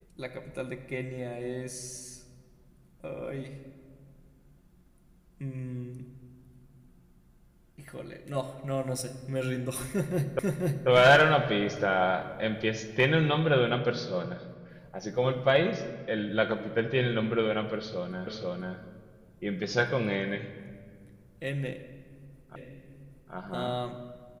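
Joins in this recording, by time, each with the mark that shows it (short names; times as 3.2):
10.39 repeat of the last 0.49 s
18.27 repeat of the last 0.49 s
22.56 repeat of the last 0.78 s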